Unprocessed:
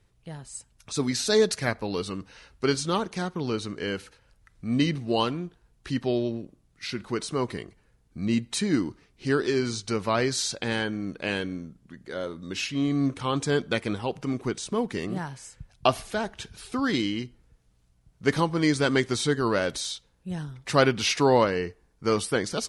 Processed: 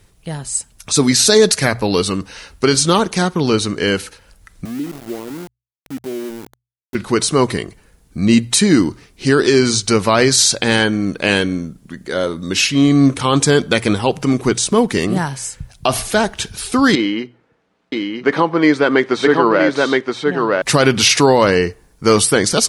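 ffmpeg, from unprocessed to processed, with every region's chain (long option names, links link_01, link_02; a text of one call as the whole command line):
ffmpeg -i in.wav -filter_complex "[0:a]asettb=1/sr,asplit=3[link_01][link_02][link_03];[link_01]atrim=end=4.654[link_04];[link_02]atrim=start=4.65:end=6.95,asetpts=PTS-STARTPTS,afade=type=in:duration=0.004:curve=qsin,afade=type=out:start_time=2.296:duration=0.004:curve=qsin,acompressor=threshold=-41dB:ratio=2:attack=3.2:release=140:knee=1:detection=peak,bandpass=frequency=320:width_type=q:width=1.9,aeval=exprs='val(0)*gte(abs(val(0)),0.00562)':channel_layout=same[link_05];[link_03]atrim=start=6.946[link_06];[link_04][link_05]acrossfade=duration=0.004:curve1=hsin:curve2=qsin[link_07];[link_07][link_06]acrossfade=duration=0.004:curve1=qsin:curve2=hsin,asettb=1/sr,asplit=3[link_08][link_09][link_10];[link_08]atrim=end=16.954[link_11];[link_09]atrim=start=16.95:end=20.62,asetpts=PTS-STARTPTS,afade=type=in:duration=0.004:curve=qsin,afade=type=out:start_time=3.666:duration=0.004:curve=qsin,highpass=300,lowpass=2100,aecho=1:1:971:0.631,atrim=end_sample=161847[link_12];[link_10]atrim=start=20.616[link_13];[link_11][link_12]acrossfade=duration=0.004:curve1=hsin:curve2=qsin[link_14];[link_14][link_13]acrossfade=duration=0.004:curve1=qsin:curve2=hsin,highshelf=frequency=6700:gain=9.5,bandreject=frequency=60:width_type=h:width=6,bandreject=frequency=120:width_type=h:width=6,alimiter=level_in=14.5dB:limit=-1dB:release=50:level=0:latency=1,volume=-1dB" out.wav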